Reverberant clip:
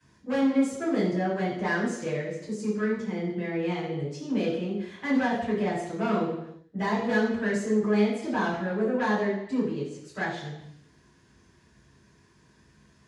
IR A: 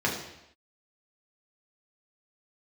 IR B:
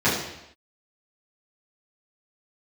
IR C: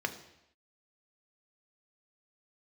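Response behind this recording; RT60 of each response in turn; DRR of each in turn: B; not exponential, not exponential, not exponential; -3.0, -11.5, 7.0 dB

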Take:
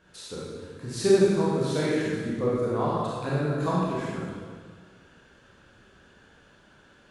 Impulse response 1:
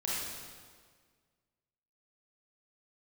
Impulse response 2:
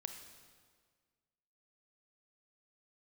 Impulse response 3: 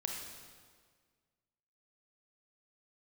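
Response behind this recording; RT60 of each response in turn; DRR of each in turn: 1; 1.7, 1.7, 1.7 s; -7.0, 6.0, 0.5 dB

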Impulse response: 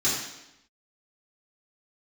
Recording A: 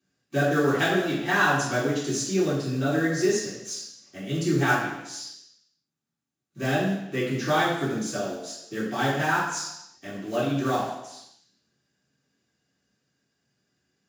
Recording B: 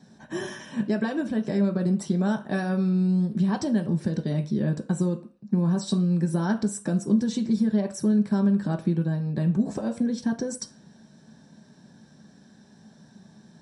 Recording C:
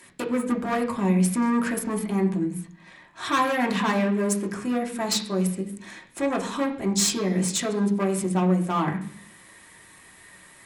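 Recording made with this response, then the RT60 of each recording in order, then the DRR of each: A; 0.90, 0.40, 0.60 s; -9.5, 3.5, -1.0 dB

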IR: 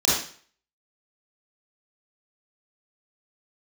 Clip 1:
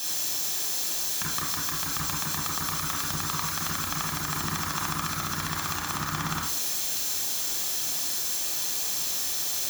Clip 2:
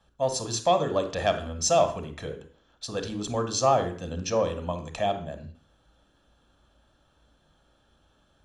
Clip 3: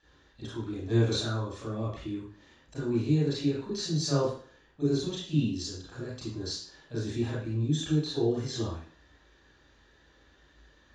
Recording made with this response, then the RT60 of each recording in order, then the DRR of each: 3; 0.45, 0.45, 0.45 s; -2.0, 7.5, -8.5 dB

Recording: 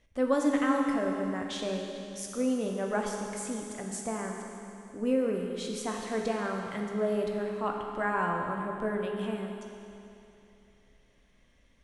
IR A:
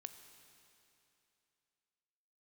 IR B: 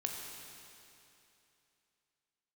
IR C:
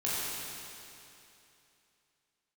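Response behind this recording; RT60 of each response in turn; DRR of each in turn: B; 2.9, 2.9, 2.9 s; 8.0, 0.5, -9.0 dB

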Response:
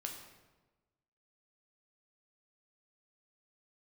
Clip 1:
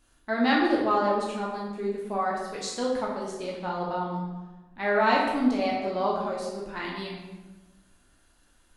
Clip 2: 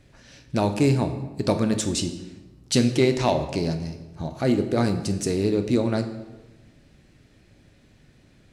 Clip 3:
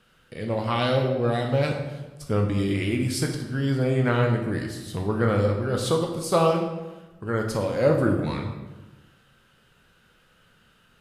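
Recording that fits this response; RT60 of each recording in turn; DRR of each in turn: 3; 1.2, 1.2, 1.2 s; -4.0, 7.0, 1.5 dB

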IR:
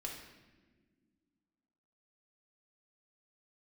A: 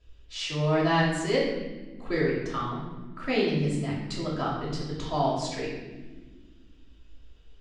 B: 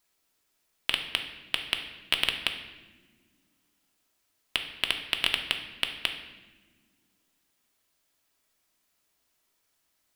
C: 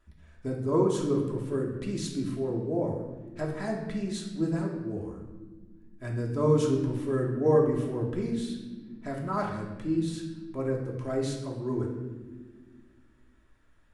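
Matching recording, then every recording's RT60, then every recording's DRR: C; not exponential, not exponential, not exponential; -12.0, 3.5, -2.0 dB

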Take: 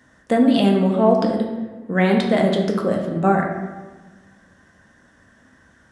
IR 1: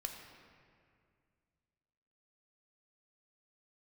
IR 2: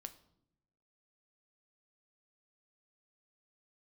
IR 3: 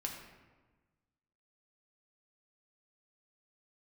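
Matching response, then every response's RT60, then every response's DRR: 3; 2.2 s, not exponential, 1.3 s; 3.0, 9.0, 0.0 dB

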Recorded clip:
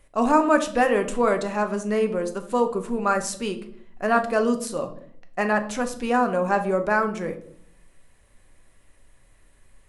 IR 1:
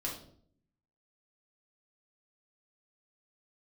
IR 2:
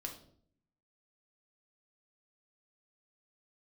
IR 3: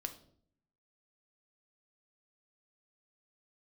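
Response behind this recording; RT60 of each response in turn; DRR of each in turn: 3; 0.60, 0.60, 0.60 s; -4.0, 1.5, 6.5 dB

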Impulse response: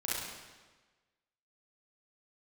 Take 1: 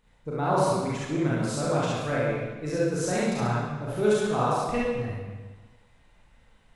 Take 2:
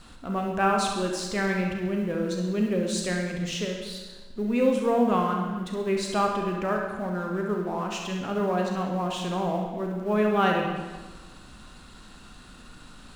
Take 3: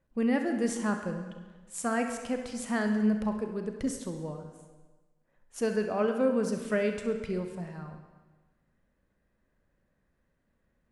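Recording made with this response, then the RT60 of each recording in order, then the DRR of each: 1; 1.3, 1.3, 1.3 s; -8.0, 1.0, 5.0 dB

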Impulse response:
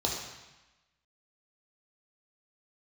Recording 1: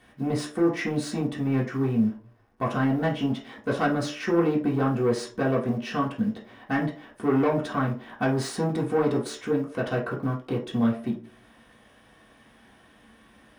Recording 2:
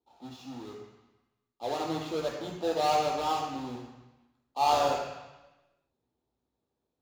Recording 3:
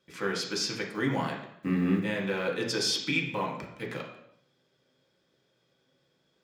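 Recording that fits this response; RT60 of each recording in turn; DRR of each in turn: 2; not exponential, 1.0 s, 0.70 s; -4.5, -2.0, -1.0 dB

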